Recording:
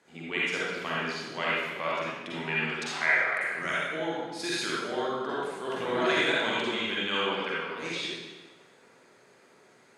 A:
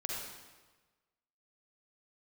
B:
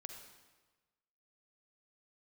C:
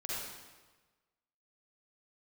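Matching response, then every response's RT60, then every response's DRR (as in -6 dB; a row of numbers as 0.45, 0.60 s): C; 1.3, 1.3, 1.3 s; -3.0, 4.0, -7.0 dB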